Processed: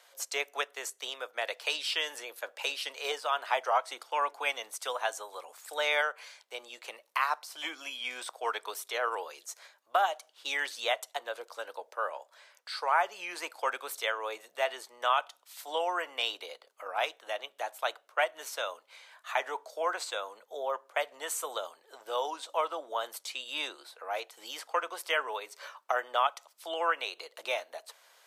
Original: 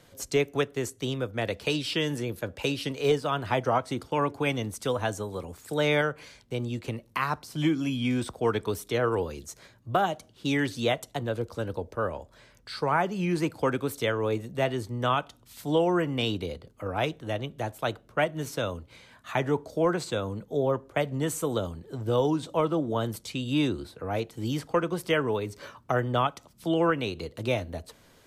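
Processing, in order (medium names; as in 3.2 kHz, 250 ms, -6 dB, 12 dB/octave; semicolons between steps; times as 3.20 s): high-pass 650 Hz 24 dB/octave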